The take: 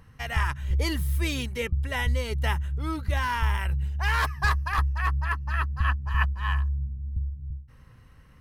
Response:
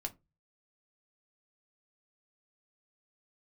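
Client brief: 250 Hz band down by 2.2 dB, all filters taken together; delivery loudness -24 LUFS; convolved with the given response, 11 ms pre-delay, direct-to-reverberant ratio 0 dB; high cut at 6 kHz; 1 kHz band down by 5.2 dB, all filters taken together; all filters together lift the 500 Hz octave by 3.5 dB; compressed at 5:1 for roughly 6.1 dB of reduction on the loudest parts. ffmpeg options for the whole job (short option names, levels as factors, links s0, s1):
-filter_complex "[0:a]lowpass=6000,equalizer=f=250:t=o:g=-5.5,equalizer=f=500:t=o:g=7,equalizer=f=1000:t=o:g=-7.5,acompressor=threshold=0.0447:ratio=5,asplit=2[s0][s1];[1:a]atrim=start_sample=2205,adelay=11[s2];[s1][s2]afir=irnorm=-1:irlink=0,volume=1.12[s3];[s0][s3]amix=inputs=2:normalize=0,volume=1.78"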